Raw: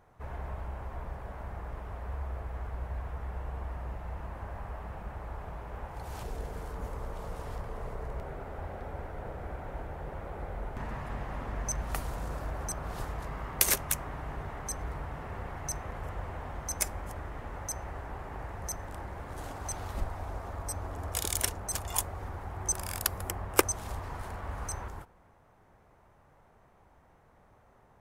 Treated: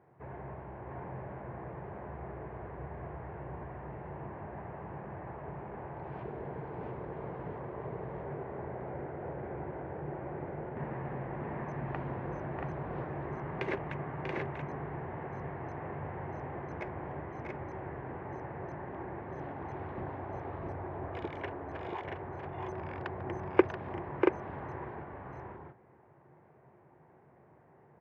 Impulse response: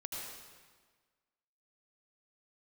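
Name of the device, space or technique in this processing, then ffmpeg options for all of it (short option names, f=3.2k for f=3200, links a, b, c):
bass cabinet: -filter_complex "[0:a]highpass=110,asettb=1/sr,asplit=3[a][b][c];[a]atrim=end=21.274[d];[b]atrim=start=21.27:end=22.05,asetpts=PTS-STARTPTS,afade=t=in:d=0.004:c=qsin,afade=t=out:st=0.776:d=0.004:c=qsin,bass=f=250:g=-12,treble=f=4k:g=-6[e];[c]atrim=start=22.046[f];[d][e]acrossfade=d=0.004:c1=hsin:c2=qsin[g];[g][f]acrossfade=d=0.004:c1=qsin:c2=hsin,highpass=67,equalizer=f=140:t=q:w=4:g=9,equalizer=f=360:t=q:w=4:g=9,equalizer=f=1.3k:t=q:w=4:g=-7,lowpass=f=2.2k:w=0.5412,lowpass=f=2.2k:w=1.3066,aecho=1:1:641|680:0.501|0.631,volume=-1.5dB"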